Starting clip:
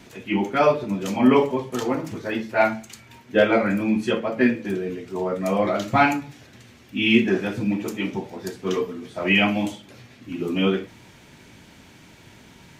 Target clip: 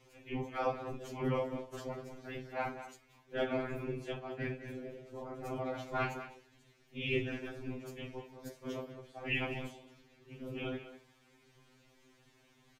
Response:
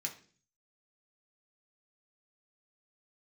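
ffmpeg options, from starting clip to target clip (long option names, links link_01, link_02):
-filter_complex "[0:a]asettb=1/sr,asplit=3[link_01][link_02][link_03];[link_01]atrim=end=8.444[link_04];[link_02]atrim=start=8.44:end=8.85,asetpts=PTS-STARTPTS,afade=type=in:duration=0.004:curve=qsin,afade=type=out:start_time=0.406:duration=0.004:curve=qsin,highshelf=frequency=11000:gain=9[link_05];[link_03]atrim=start=8.846[link_06];[link_04][link_05]acrossfade=duration=0.004:curve1=hsin:curve2=qsin[link_07];[link_07][link_06]acrossfade=duration=0.004:curve1=qsin:curve2=hsin,afftfilt=real='hypot(re,im)*cos(2*PI*random(0))':imag='hypot(re,im)*sin(2*PI*random(1))':win_size=512:overlap=0.75,aeval=exprs='val(0)*sin(2*PI*97*n/s)':channel_layout=same,asplit=2[link_08][link_09];[link_09]adelay=200,highpass=300,lowpass=3400,asoftclip=type=hard:threshold=-18.5dB,volume=-11dB[link_10];[link_08][link_10]amix=inputs=2:normalize=0,afftfilt=real='re*2.45*eq(mod(b,6),0)':imag='im*2.45*eq(mod(b,6),0)':win_size=2048:overlap=0.75,volume=-6dB"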